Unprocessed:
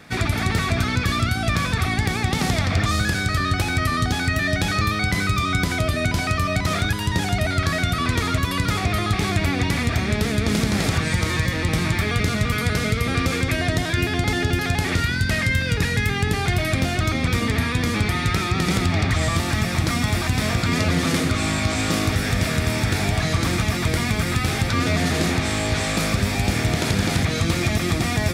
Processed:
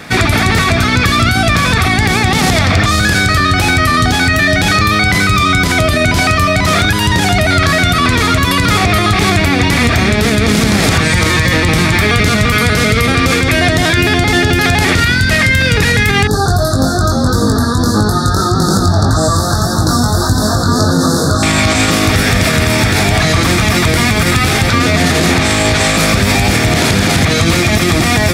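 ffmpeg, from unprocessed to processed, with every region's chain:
-filter_complex "[0:a]asettb=1/sr,asplit=3[a][b][c];[a]atrim=end=16.274[d];[b]atrim=start=16.27:end=21.43,asetpts=PTS-STARTPTS,afade=t=in:d=0.004:c=qsin,afade=t=out:st=5.156:d=0.004:c=qsin,flanger=delay=19:depth=2.1:speed=1.7,asuperstop=centerf=2500:order=12:qfactor=1.1[e];[c]atrim=start=21.426[f];[d][e]acrossfade=d=0.004:c1=hsin:c2=qsin[g];[g][f]acrossfade=d=0.004:c1=qsin:c2=hsin,lowshelf=f=210:g=-3.5,alimiter=level_in=16.5dB:limit=-1dB:release=50:level=0:latency=1,volume=-1dB"

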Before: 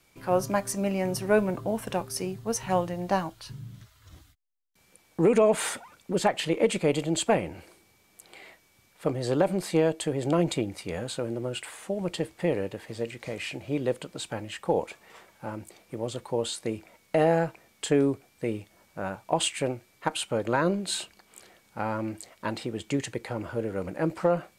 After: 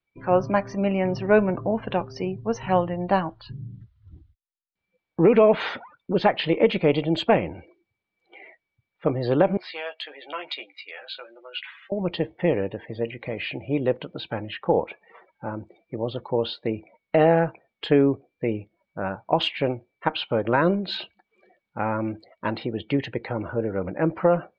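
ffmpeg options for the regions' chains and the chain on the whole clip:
-filter_complex "[0:a]asettb=1/sr,asplit=3[a][b][c];[a]atrim=end=9.574[d];[b]atrim=start=9.57:end=11.92,asetpts=PTS-STARTPTS,afade=t=in:d=0.004:c=qsin,afade=t=out:st=2.346:d=0.004:c=qsin,highpass=1.4k,asplit=2[e][f];[f]adelay=14,volume=-6dB[g];[e][g]amix=inputs=2:normalize=0,atrim=end_sample=103635[h];[c]atrim=start=11.916[i];[d][h]acrossfade=d=0.004:c1=hsin:c2=qsin[j];[j][i]acrossfade=d=0.004:c1=qsin:c2=hsin,lowpass=f=4.1k:w=0.5412,lowpass=f=4.1k:w=1.3066,afftdn=nr=26:nf=-48,volume=4.5dB"

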